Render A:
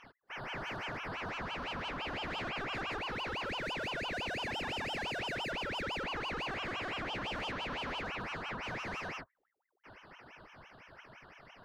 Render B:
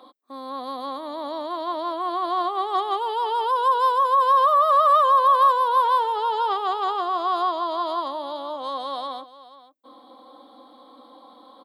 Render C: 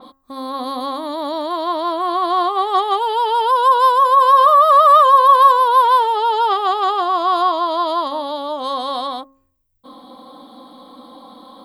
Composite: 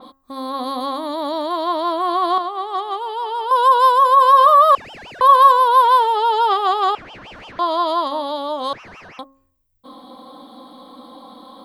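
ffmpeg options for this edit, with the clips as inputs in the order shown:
-filter_complex "[0:a]asplit=3[s0][s1][s2];[2:a]asplit=5[s3][s4][s5][s6][s7];[s3]atrim=end=2.382[s8];[1:a]atrim=start=2.378:end=3.512[s9];[s4]atrim=start=3.508:end=4.752[s10];[s0]atrim=start=4.748:end=5.212[s11];[s5]atrim=start=5.208:end=6.952[s12];[s1]atrim=start=6.948:end=7.592[s13];[s6]atrim=start=7.588:end=8.732[s14];[s2]atrim=start=8.728:end=9.192[s15];[s7]atrim=start=9.188[s16];[s8][s9]acrossfade=d=0.004:c1=hsin:c2=hsin[s17];[s17][s10]acrossfade=d=0.004:c1=hsin:c2=hsin[s18];[s18][s11]acrossfade=d=0.004:c1=hsin:c2=hsin[s19];[s19][s12]acrossfade=d=0.004:c1=hsin:c2=hsin[s20];[s20][s13]acrossfade=d=0.004:c1=hsin:c2=hsin[s21];[s21][s14]acrossfade=d=0.004:c1=hsin:c2=hsin[s22];[s22][s15]acrossfade=d=0.004:c1=hsin:c2=hsin[s23];[s23][s16]acrossfade=d=0.004:c1=hsin:c2=hsin"

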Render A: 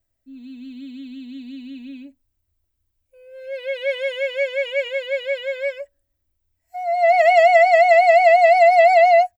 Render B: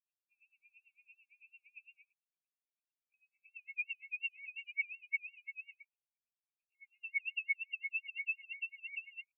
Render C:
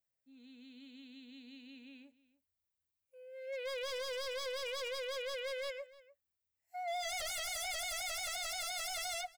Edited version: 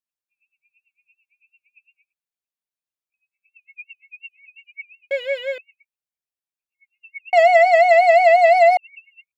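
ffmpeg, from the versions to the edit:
-filter_complex "[0:a]asplit=2[s0][s1];[1:a]asplit=3[s2][s3][s4];[s2]atrim=end=5.112[s5];[s0]atrim=start=5.108:end=5.582[s6];[s3]atrim=start=5.578:end=7.332[s7];[s1]atrim=start=7.328:end=8.772[s8];[s4]atrim=start=8.768[s9];[s5][s6]acrossfade=d=0.004:c1=hsin:c2=hsin[s10];[s10][s7]acrossfade=d=0.004:c1=hsin:c2=hsin[s11];[s11][s8]acrossfade=d=0.004:c1=hsin:c2=hsin[s12];[s12][s9]acrossfade=d=0.004:c1=hsin:c2=hsin"

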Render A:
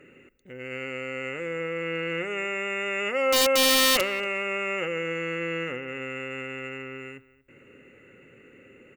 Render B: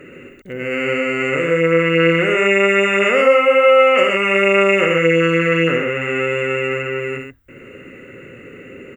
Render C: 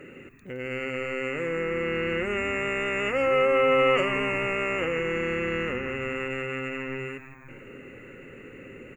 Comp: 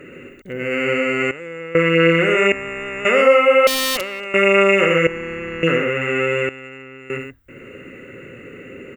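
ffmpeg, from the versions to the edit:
-filter_complex "[0:a]asplit=3[s0][s1][s2];[2:a]asplit=2[s3][s4];[1:a]asplit=6[s5][s6][s7][s8][s9][s10];[s5]atrim=end=1.312[s11];[s0]atrim=start=1.308:end=1.752[s12];[s6]atrim=start=1.748:end=2.522[s13];[s3]atrim=start=2.518:end=3.052[s14];[s7]atrim=start=3.048:end=3.672[s15];[s1]atrim=start=3.668:end=4.342[s16];[s8]atrim=start=4.338:end=5.072[s17];[s4]atrim=start=5.068:end=5.632[s18];[s9]atrim=start=5.628:end=6.492[s19];[s2]atrim=start=6.488:end=7.102[s20];[s10]atrim=start=7.098[s21];[s11][s12]acrossfade=d=0.004:c1=hsin:c2=hsin[s22];[s22][s13]acrossfade=d=0.004:c1=hsin:c2=hsin[s23];[s23][s14]acrossfade=d=0.004:c1=hsin:c2=hsin[s24];[s24][s15]acrossfade=d=0.004:c1=hsin:c2=hsin[s25];[s25][s16]acrossfade=d=0.004:c1=hsin:c2=hsin[s26];[s26][s17]acrossfade=d=0.004:c1=hsin:c2=hsin[s27];[s27][s18]acrossfade=d=0.004:c1=hsin:c2=hsin[s28];[s28][s19]acrossfade=d=0.004:c1=hsin:c2=hsin[s29];[s29][s20]acrossfade=d=0.004:c1=hsin:c2=hsin[s30];[s30][s21]acrossfade=d=0.004:c1=hsin:c2=hsin"

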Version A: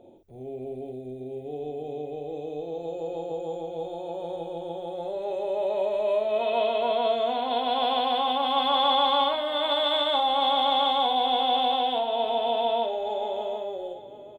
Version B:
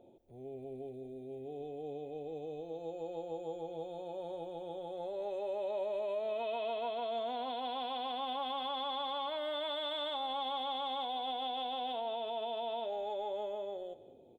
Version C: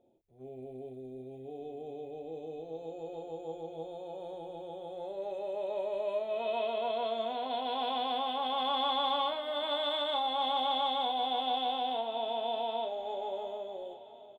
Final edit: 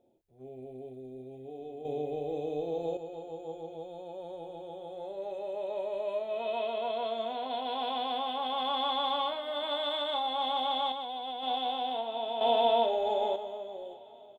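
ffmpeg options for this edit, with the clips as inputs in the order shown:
-filter_complex "[0:a]asplit=2[s0][s1];[1:a]asplit=2[s2][s3];[2:a]asplit=5[s4][s5][s6][s7][s8];[s4]atrim=end=1.852[s9];[s0]atrim=start=1.848:end=2.972[s10];[s5]atrim=start=2.968:end=3.752[s11];[s2]atrim=start=3.748:end=4.442[s12];[s6]atrim=start=4.438:end=10.922[s13];[s3]atrim=start=10.918:end=11.432[s14];[s7]atrim=start=11.428:end=12.412[s15];[s1]atrim=start=12.408:end=13.362[s16];[s8]atrim=start=13.358[s17];[s9][s10]acrossfade=d=0.004:c1=hsin:c2=hsin[s18];[s18][s11]acrossfade=d=0.004:c1=hsin:c2=hsin[s19];[s19][s12]acrossfade=d=0.004:c1=hsin:c2=hsin[s20];[s20][s13]acrossfade=d=0.004:c1=hsin:c2=hsin[s21];[s21][s14]acrossfade=d=0.004:c1=hsin:c2=hsin[s22];[s22][s15]acrossfade=d=0.004:c1=hsin:c2=hsin[s23];[s23][s16]acrossfade=d=0.004:c1=hsin:c2=hsin[s24];[s24][s17]acrossfade=d=0.004:c1=hsin:c2=hsin"

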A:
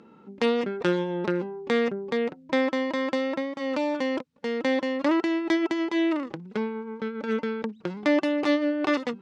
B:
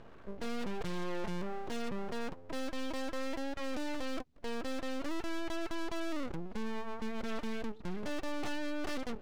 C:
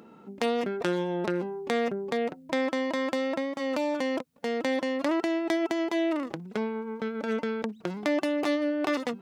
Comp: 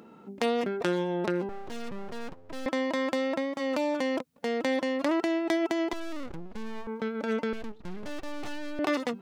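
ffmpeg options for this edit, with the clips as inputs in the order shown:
-filter_complex "[1:a]asplit=3[s0][s1][s2];[2:a]asplit=4[s3][s4][s5][s6];[s3]atrim=end=1.492[s7];[s0]atrim=start=1.488:end=2.662[s8];[s4]atrim=start=2.658:end=5.932[s9];[s1]atrim=start=5.928:end=6.872[s10];[s5]atrim=start=6.868:end=7.532[s11];[s2]atrim=start=7.528:end=8.792[s12];[s6]atrim=start=8.788[s13];[s7][s8]acrossfade=d=0.004:c1=hsin:c2=hsin[s14];[s14][s9]acrossfade=d=0.004:c1=hsin:c2=hsin[s15];[s15][s10]acrossfade=d=0.004:c1=hsin:c2=hsin[s16];[s16][s11]acrossfade=d=0.004:c1=hsin:c2=hsin[s17];[s17][s12]acrossfade=d=0.004:c1=hsin:c2=hsin[s18];[s18][s13]acrossfade=d=0.004:c1=hsin:c2=hsin"

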